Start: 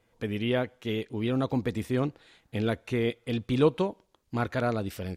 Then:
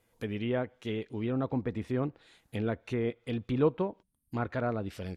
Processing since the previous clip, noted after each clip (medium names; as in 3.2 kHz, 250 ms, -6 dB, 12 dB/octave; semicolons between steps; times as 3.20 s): time-frequency box 4.02–4.32 s, 290–8100 Hz -23 dB; low-pass that closes with the level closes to 1.8 kHz, closed at -25 dBFS; peaking EQ 12 kHz +12.5 dB 0.96 oct; trim -3.5 dB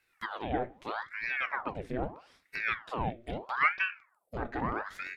small resonant body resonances 560/1700 Hz, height 11 dB; reverberation RT60 0.35 s, pre-delay 7 ms, DRR 11.5 dB; ring modulator with a swept carrier 1.1 kHz, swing 90%, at 0.78 Hz; trim -1.5 dB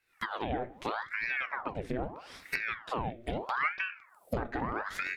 recorder AGC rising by 55 dB/s; trim -5 dB